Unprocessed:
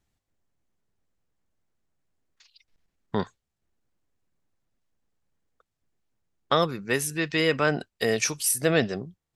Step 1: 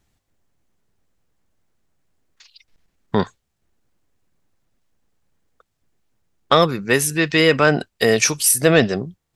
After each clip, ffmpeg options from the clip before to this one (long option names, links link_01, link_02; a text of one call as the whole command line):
ffmpeg -i in.wav -af "acontrast=65,volume=2.5dB" out.wav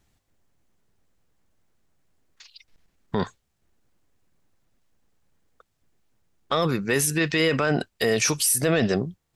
ffmpeg -i in.wav -af "alimiter=limit=-12.5dB:level=0:latency=1:release=23" out.wav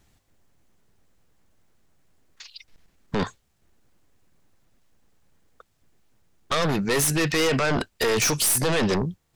ffmpeg -i in.wav -af "aeval=exprs='0.251*(cos(1*acos(clip(val(0)/0.251,-1,1)))-cos(1*PI/2))+0.126*(cos(2*acos(clip(val(0)/0.251,-1,1)))-cos(2*PI/2))+0.0224*(cos(4*acos(clip(val(0)/0.251,-1,1)))-cos(4*PI/2))+0.0794*(cos(5*acos(clip(val(0)/0.251,-1,1)))-cos(5*PI/2))':channel_layout=same,volume=-3dB" out.wav